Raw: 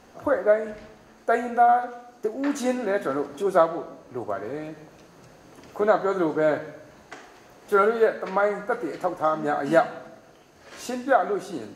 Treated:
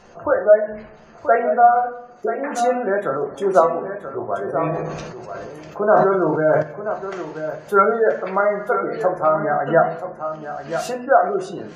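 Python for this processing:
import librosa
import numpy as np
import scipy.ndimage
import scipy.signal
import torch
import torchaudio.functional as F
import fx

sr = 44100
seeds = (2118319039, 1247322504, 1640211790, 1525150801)

y = fx.peak_eq(x, sr, hz=280.0, db=-9.5, octaves=0.36)
y = fx.spec_gate(y, sr, threshold_db=-25, keep='strong')
y = y + 10.0 ** (-9.5 / 20.0) * np.pad(y, (int(981 * sr / 1000.0), 0))[:len(y)]
y = fx.room_shoebox(y, sr, seeds[0], volume_m3=130.0, walls='furnished', distance_m=0.83)
y = fx.sustainer(y, sr, db_per_s=29.0, at=(4.57, 6.61), fade=0.02)
y = y * librosa.db_to_amplitude(4.0)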